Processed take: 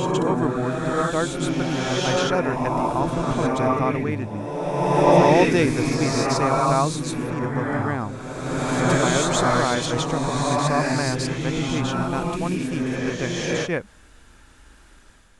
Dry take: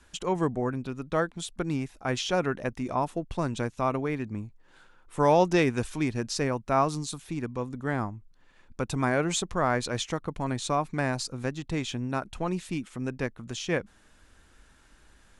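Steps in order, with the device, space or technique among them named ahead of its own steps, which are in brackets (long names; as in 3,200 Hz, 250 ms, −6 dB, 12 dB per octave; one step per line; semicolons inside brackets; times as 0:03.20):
reverse reverb (reversed playback; convolution reverb RT60 2.2 s, pre-delay 109 ms, DRR −3.5 dB; reversed playback)
level +2.5 dB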